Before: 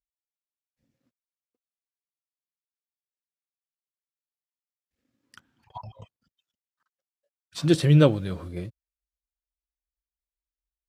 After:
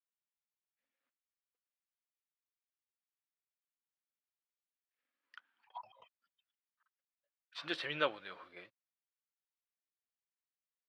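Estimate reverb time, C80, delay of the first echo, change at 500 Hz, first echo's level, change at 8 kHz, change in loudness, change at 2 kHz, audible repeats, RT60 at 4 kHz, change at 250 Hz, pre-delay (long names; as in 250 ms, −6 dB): no reverb audible, no reverb audible, no echo audible, −16.0 dB, no echo audible, −24.0 dB, −18.5 dB, −3.0 dB, no echo audible, no reverb audible, −25.5 dB, no reverb audible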